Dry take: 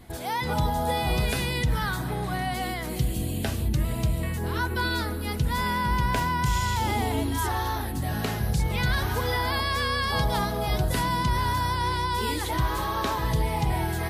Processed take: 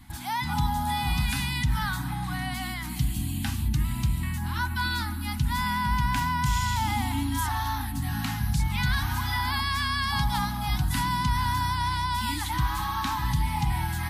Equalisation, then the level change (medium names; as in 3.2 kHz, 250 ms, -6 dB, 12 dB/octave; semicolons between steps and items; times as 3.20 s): elliptic band-stop 290–810 Hz, stop band 40 dB; 0.0 dB